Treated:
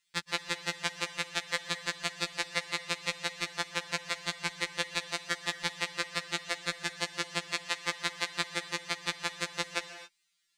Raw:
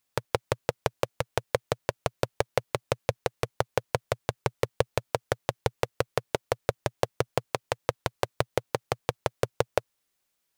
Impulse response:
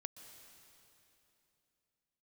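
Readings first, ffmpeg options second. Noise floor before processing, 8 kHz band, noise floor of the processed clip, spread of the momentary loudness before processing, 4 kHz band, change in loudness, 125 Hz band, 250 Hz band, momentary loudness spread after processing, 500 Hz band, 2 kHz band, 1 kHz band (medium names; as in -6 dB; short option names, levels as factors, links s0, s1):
-78 dBFS, +3.0 dB, -77 dBFS, 3 LU, +6.0 dB, -2.0 dB, -13.5 dB, -5.0 dB, 2 LU, -14.0 dB, +4.0 dB, -6.0 dB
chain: -filter_complex "[0:a]equalizer=f=250:t=o:w=1:g=4,equalizer=f=500:t=o:w=1:g=-10,equalizer=f=2000:t=o:w=1:g=11,equalizer=f=4000:t=o:w=1:g=11,equalizer=f=8000:t=o:w=1:g=11,equalizer=f=16000:t=o:w=1:g=-8[s0];[1:a]atrim=start_sample=2205,afade=t=out:st=0.33:d=0.01,atrim=end_sample=14994[s1];[s0][s1]afir=irnorm=-1:irlink=0,afftfilt=real='re*2.83*eq(mod(b,8),0)':imag='im*2.83*eq(mod(b,8),0)':win_size=2048:overlap=0.75"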